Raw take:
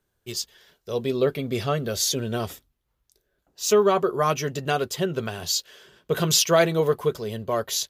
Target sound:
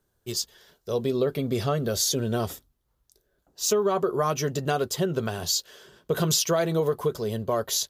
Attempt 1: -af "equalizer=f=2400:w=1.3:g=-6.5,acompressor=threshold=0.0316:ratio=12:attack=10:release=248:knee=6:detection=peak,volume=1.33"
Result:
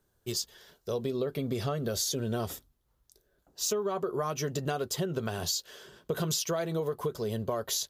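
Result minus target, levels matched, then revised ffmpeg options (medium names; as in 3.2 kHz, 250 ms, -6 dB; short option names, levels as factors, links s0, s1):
compression: peak gain reduction +8 dB
-af "equalizer=f=2400:w=1.3:g=-6.5,acompressor=threshold=0.0841:ratio=12:attack=10:release=248:knee=6:detection=peak,volume=1.33"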